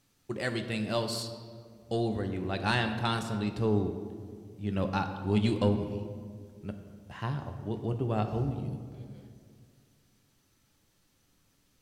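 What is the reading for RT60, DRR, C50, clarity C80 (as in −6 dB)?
2.1 s, 6.0 dB, 8.5 dB, 9.5 dB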